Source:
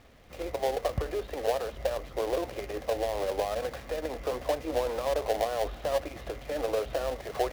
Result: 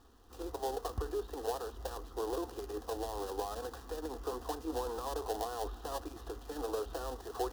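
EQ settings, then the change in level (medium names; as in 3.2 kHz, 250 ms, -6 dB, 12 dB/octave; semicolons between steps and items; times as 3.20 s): static phaser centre 590 Hz, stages 6; -2.5 dB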